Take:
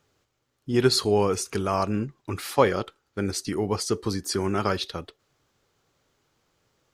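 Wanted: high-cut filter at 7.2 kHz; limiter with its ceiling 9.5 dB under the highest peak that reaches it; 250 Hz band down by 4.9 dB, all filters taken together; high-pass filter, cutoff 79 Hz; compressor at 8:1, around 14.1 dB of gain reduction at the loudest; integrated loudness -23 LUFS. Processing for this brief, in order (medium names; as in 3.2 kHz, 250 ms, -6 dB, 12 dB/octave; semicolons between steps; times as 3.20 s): high-pass 79 Hz; low-pass 7.2 kHz; peaking EQ 250 Hz -7 dB; compression 8:1, threshold -30 dBFS; trim +14.5 dB; peak limiter -11 dBFS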